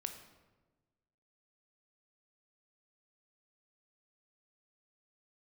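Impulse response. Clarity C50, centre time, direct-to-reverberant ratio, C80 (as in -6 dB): 8.5 dB, 19 ms, 6.0 dB, 10.5 dB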